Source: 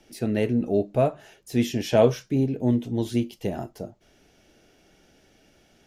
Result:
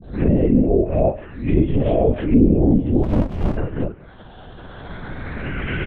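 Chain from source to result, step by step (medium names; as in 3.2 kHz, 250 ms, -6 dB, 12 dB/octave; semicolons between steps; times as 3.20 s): reverse spectral sustain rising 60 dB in 0.60 s; recorder AGC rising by 12 dB/s; speakerphone echo 180 ms, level -17 dB; on a send at -21 dB: reverberation RT60 0.30 s, pre-delay 3 ms; on the sum: peak limiter -12 dBFS, peak gain reduction 8 dB; phase dispersion highs, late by 41 ms, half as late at 470 Hz; touch-sensitive phaser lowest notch 360 Hz, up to 1.4 kHz, full sweep at -17.5 dBFS; low-pass that closes with the level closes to 1 kHz, closed at -19.5 dBFS; LPC vocoder at 8 kHz whisper; 3.03–3.57 s: sliding maximum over 65 samples; trim +7 dB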